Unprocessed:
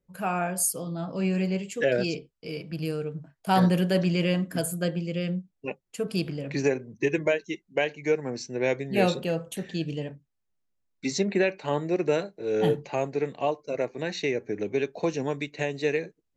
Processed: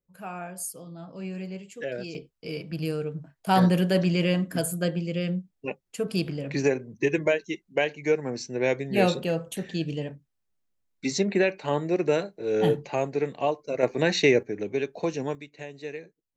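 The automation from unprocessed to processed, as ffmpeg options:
-af "asetnsamples=n=441:p=0,asendcmd='2.15 volume volume 1dB;13.83 volume volume 8dB;14.43 volume volume -1dB;15.35 volume volume -10.5dB',volume=0.355"

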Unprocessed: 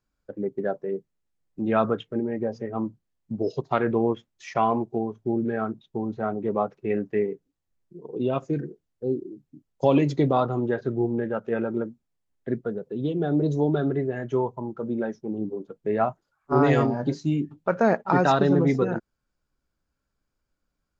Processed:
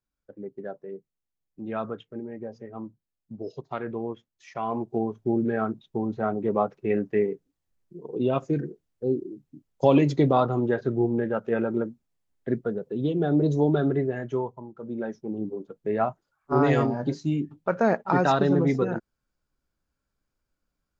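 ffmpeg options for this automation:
-af "volume=3.35,afade=t=in:st=4.62:d=0.41:silence=0.316228,afade=t=out:st=14.01:d=0.7:silence=0.251189,afade=t=in:st=14.71:d=0.45:silence=0.334965"

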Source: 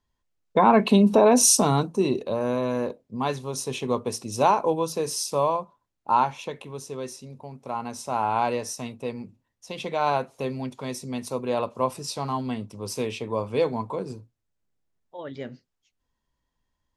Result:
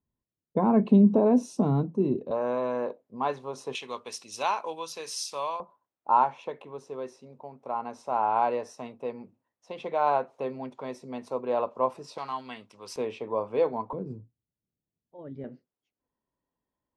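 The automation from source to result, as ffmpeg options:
-af "asetnsamples=n=441:p=0,asendcmd='2.31 bandpass f 820;3.75 bandpass f 2800;5.6 bandpass f 720;12.18 bandpass f 2000;12.96 bandpass f 710;13.93 bandpass f 170;15.44 bandpass f 420',bandpass=f=190:t=q:w=0.76:csg=0"

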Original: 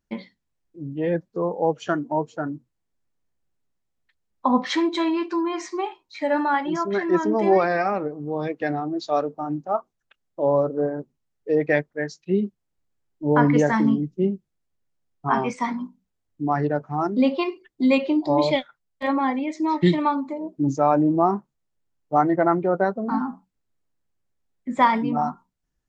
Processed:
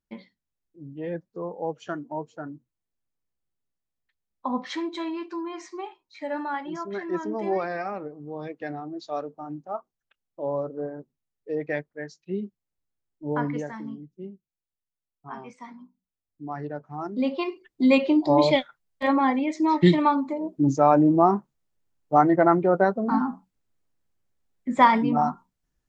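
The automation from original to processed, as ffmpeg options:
-af "volume=2.99,afade=t=out:st=13.34:d=0.4:silence=0.375837,afade=t=in:st=15.73:d=1.32:silence=0.398107,afade=t=in:st=17.05:d=0.99:silence=0.316228"

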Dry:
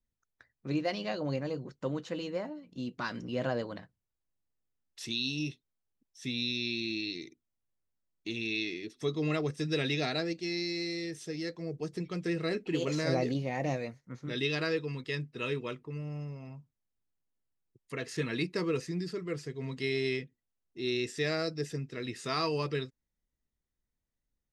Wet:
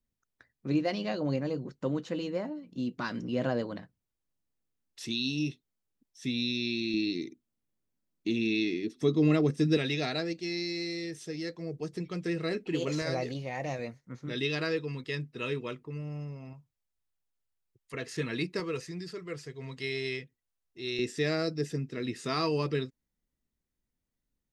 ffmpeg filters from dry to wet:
-af "asetnsamples=n=441:p=0,asendcmd='6.94 equalizer g 11;9.77 equalizer g 0.5;13.02 equalizer g -7;13.79 equalizer g 1;16.53 equalizer g -8;17.94 equalizer g 0;18.6 equalizer g -6.5;20.99 equalizer g 5.5',equalizer=f=240:t=o:w=1.6:g=5"

